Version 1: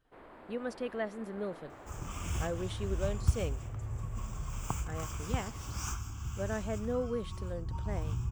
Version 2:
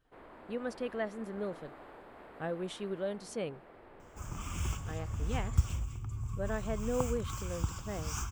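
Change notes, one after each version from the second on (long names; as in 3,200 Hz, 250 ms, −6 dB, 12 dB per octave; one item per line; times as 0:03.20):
second sound: entry +2.30 s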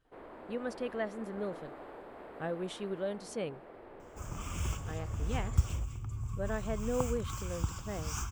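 first sound: add parametric band 450 Hz +5.5 dB 1.9 octaves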